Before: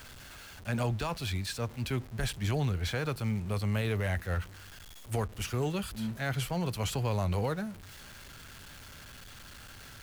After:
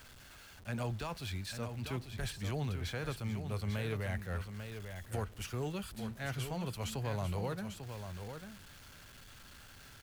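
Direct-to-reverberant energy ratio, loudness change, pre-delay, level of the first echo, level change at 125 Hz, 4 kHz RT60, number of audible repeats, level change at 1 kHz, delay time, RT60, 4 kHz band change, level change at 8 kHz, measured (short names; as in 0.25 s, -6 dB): none, -6.5 dB, none, -8.0 dB, -6.0 dB, none, 1, -6.0 dB, 0.845 s, none, -6.0 dB, -6.0 dB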